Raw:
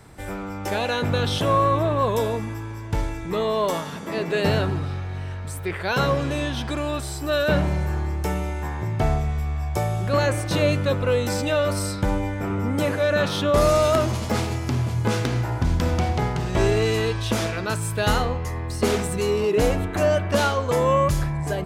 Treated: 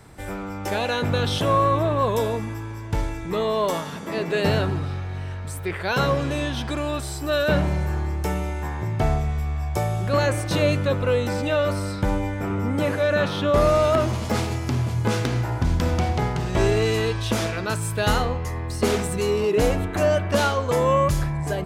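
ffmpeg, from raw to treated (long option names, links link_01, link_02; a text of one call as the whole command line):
ffmpeg -i in.wav -filter_complex "[0:a]asettb=1/sr,asplit=3[link_01][link_02][link_03];[link_01]atrim=end=10.754[link_04];[link_02]atrim=start=10.75:end=14.25,asetpts=PTS-STARTPTS,afade=type=in:duration=0.004:curve=qsin,afade=type=out:start_time=3.496:duration=0.004:curve=qsin,acrossover=split=3500[link_05][link_06];[link_06]acompressor=threshold=-40dB:ratio=4:attack=1:release=60[link_07];[link_05][link_07]amix=inputs=2:normalize=0[link_08];[link_03]atrim=start=14.246[link_09];[link_04][link_08]acrossfade=duration=0.004:curve1=hsin:curve2=qsin[link_10];[link_10][link_09]acrossfade=duration=0.004:curve1=qsin:curve2=hsin" out.wav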